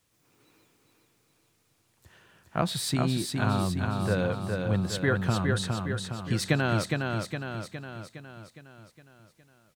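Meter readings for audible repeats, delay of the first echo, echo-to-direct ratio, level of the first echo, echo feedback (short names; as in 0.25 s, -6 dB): 6, 0.412 s, -2.5 dB, -4.0 dB, 55%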